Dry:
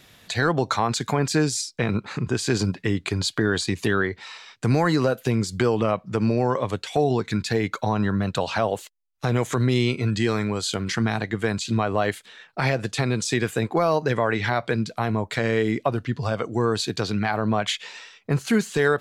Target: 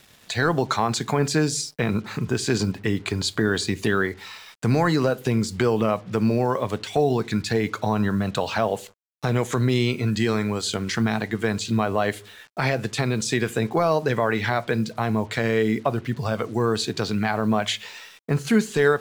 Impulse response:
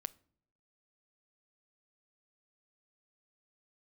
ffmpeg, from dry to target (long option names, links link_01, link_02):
-filter_complex "[1:a]atrim=start_sample=2205,asetrate=66150,aresample=44100[link_01];[0:a][link_01]afir=irnorm=-1:irlink=0,acrusher=bits=8:mix=0:aa=0.5,volume=6.5dB"